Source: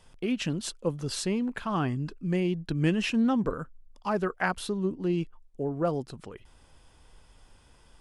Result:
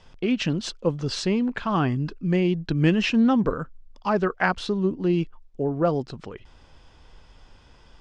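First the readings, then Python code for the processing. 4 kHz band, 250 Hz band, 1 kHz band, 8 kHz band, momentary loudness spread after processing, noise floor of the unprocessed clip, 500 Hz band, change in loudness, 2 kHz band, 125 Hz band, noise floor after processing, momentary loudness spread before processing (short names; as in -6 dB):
+5.5 dB, +5.5 dB, +5.5 dB, n/a, 12 LU, -59 dBFS, +5.5 dB, +5.5 dB, +5.5 dB, +5.5 dB, -53 dBFS, 12 LU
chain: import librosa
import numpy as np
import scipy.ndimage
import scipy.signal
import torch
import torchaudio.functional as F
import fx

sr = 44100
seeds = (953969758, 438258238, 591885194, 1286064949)

y = scipy.signal.sosfilt(scipy.signal.butter(4, 6100.0, 'lowpass', fs=sr, output='sos'), x)
y = F.gain(torch.from_numpy(y), 5.5).numpy()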